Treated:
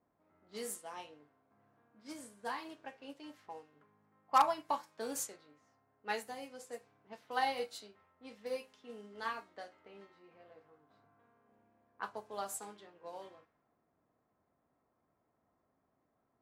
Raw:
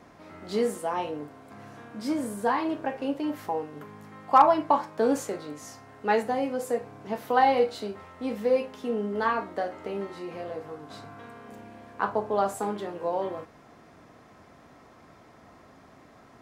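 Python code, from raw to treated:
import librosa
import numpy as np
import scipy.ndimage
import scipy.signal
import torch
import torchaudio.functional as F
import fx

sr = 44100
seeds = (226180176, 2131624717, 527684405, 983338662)

y = fx.env_lowpass(x, sr, base_hz=770.0, full_db=-23.0)
y = librosa.effects.preemphasis(y, coef=0.9, zi=[0.0])
y = fx.upward_expand(y, sr, threshold_db=-55.0, expansion=1.5)
y = y * 10.0 ** (6.5 / 20.0)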